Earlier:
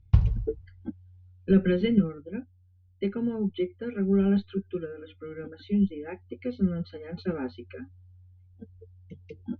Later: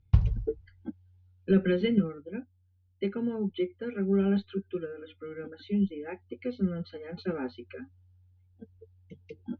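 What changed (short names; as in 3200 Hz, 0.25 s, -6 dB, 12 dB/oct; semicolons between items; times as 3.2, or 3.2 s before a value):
speech: add low shelf 120 Hz -11.5 dB; background: send -6.0 dB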